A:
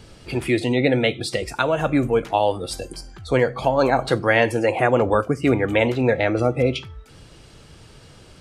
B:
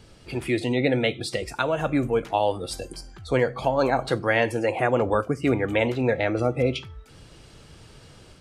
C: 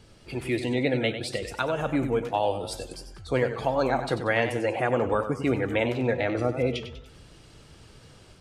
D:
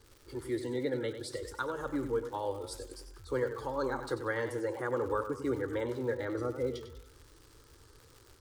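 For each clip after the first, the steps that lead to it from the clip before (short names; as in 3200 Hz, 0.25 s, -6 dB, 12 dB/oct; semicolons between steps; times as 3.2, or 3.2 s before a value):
AGC gain up to 3.5 dB; gain -5.5 dB
warbling echo 95 ms, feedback 44%, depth 124 cents, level -10 dB; gain -3 dB
fixed phaser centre 690 Hz, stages 6; crackle 240/s -41 dBFS; gain -5 dB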